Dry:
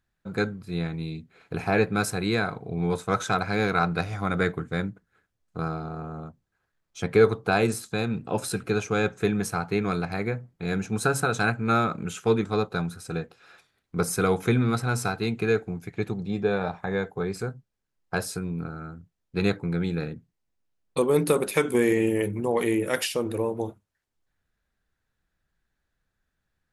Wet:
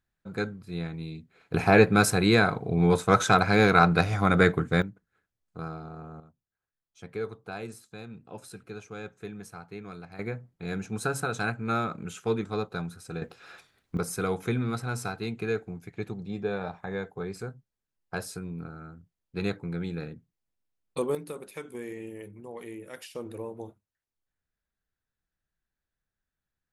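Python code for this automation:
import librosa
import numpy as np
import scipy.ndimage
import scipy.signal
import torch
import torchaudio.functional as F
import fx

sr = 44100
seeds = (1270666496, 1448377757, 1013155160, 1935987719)

y = fx.gain(x, sr, db=fx.steps((0.0, -4.5), (1.54, 4.5), (4.82, -7.0), (6.2, -15.5), (10.19, -5.5), (13.22, 4.0), (13.97, -6.0), (21.15, -17.0), (23.15, -10.5)))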